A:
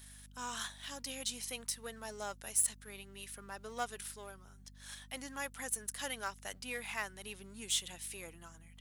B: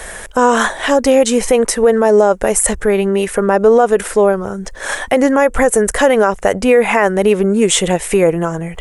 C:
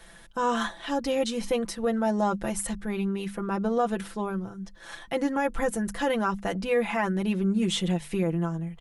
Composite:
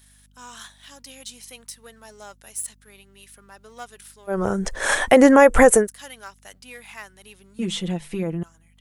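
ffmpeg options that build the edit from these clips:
-filter_complex "[0:a]asplit=3[a][b][c];[a]atrim=end=4.43[d];[1:a]atrim=start=4.27:end=5.89[e];[b]atrim=start=5.73:end=7.592[f];[2:a]atrim=start=7.588:end=8.432[g];[c]atrim=start=8.428[h];[d][e]acrossfade=d=0.16:c1=tri:c2=tri[i];[i][f]acrossfade=d=0.16:c1=tri:c2=tri[j];[j][g]acrossfade=d=0.004:c1=hsin:c2=hsin[k];[k][h]acrossfade=d=0.004:c1=hsin:c2=hsin"

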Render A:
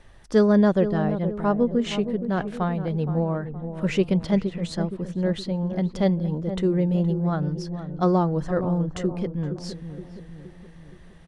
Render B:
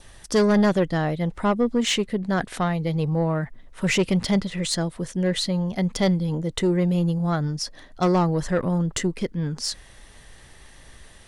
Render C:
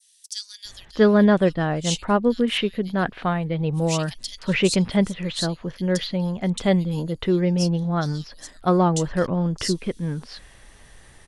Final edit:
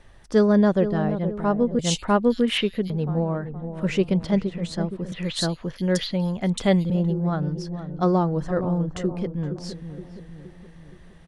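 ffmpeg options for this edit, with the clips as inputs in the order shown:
-filter_complex "[2:a]asplit=2[a][b];[0:a]asplit=3[c][d][e];[c]atrim=end=1.792[f];[a]atrim=start=1.788:end=2.902[g];[d]atrim=start=2.898:end=5.122[h];[b]atrim=start=5.118:end=6.902[i];[e]atrim=start=6.898[j];[f][g]acrossfade=d=0.004:c1=hsin:c2=hsin[k];[k][h]acrossfade=d=0.004:c1=hsin:c2=hsin[l];[l][i]acrossfade=d=0.004:c1=hsin:c2=hsin[m];[m][j]acrossfade=d=0.004:c1=hsin:c2=hsin"

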